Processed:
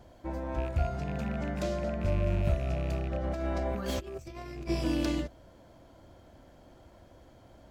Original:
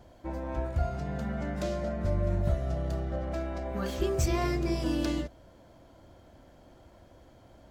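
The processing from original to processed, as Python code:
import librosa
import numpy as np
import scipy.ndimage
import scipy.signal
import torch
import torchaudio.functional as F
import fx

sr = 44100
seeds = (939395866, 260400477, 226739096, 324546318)

y = fx.rattle_buzz(x, sr, strikes_db=-30.0, level_db=-35.0)
y = fx.over_compress(y, sr, threshold_db=-34.0, ratio=-0.5, at=(3.23, 4.68), fade=0.02)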